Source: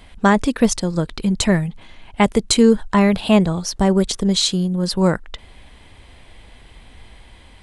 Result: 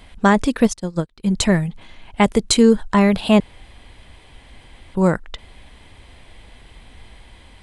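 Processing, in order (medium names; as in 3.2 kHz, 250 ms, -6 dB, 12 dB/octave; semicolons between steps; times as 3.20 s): 0.67–1.27 s: upward expansion 2.5:1, over -35 dBFS; 3.40–4.95 s: room tone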